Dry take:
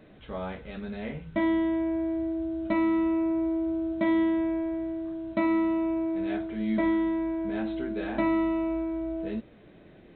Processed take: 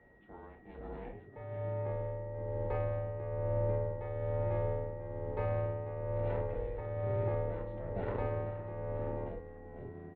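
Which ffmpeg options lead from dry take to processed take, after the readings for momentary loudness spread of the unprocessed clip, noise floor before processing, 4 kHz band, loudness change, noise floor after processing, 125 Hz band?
11 LU, -53 dBFS, n/a, -8.5 dB, -55 dBFS, +9.0 dB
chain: -filter_complex "[0:a]alimiter=limit=-24dB:level=0:latency=1,dynaudnorm=f=410:g=9:m=5.5dB,asplit=7[a][b][c][d][e][f][g];[b]adelay=492,afreqshift=-78,volume=-6dB[h];[c]adelay=984,afreqshift=-156,volume=-11.8dB[i];[d]adelay=1476,afreqshift=-234,volume=-17.7dB[j];[e]adelay=1968,afreqshift=-312,volume=-23.5dB[k];[f]adelay=2460,afreqshift=-390,volume=-29.4dB[l];[g]adelay=2952,afreqshift=-468,volume=-35.2dB[m];[a][h][i][j][k][l][m]amix=inputs=7:normalize=0,aeval=exprs='val(0)*sin(2*PI*240*n/s)':c=same,afreqshift=20,tremolo=f=1.1:d=0.58,aeval=exprs='val(0)+0.00251*sin(2*PI*1900*n/s)':c=same,adynamicsmooth=sensitivity=0.5:basefreq=1.6k,aresample=11025,aresample=44100,volume=-5.5dB"

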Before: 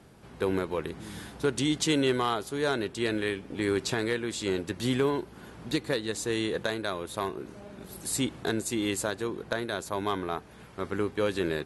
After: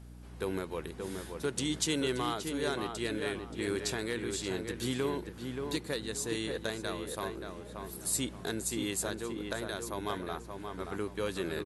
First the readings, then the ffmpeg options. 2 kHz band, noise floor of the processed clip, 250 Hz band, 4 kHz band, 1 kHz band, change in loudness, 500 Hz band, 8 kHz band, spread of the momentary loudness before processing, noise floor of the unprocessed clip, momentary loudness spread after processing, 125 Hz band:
-5.5 dB, -47 dBFS, -5.5 dB, -3.5 dB, -5.5 dB, -5.0 dB, -6.0 dB, 0.0 dB, 11 LU, -50 dBFS, 8 LU, -5.0 dB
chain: -filter_complex "[0:a]highshelf=f=5.3k:g=9.5,aeval=exprs='val(0)+0.00891*(sin(2*PI*60*n/s)+sin(2*PI*2*60*n/s)/2+sin(2*PI*3*60*n/s)/3+sin(2*PI*4*60*n/s)/4+sin(2*PI*5*60*n/s)/5)':c=same,asplit=2[a][b];[b]adelay=578,lowpass=f=2.1k:p=1,volume=-5dB,asplit=2[c][d];[d]adelay=578,lowpass=f=2.1k:p=1,volume=0.32,asplit=2[e][f];[f]adelay=578,lowpass=f=2.1k:p=1,volume=0.32,asplit=2[g][h];[h]adelay=578,lowpass=f=2.1k:p=1,volume=0.32[i];[a][c][e][g][i]amix=inputs=5:normalize=0,volume=-7dB"

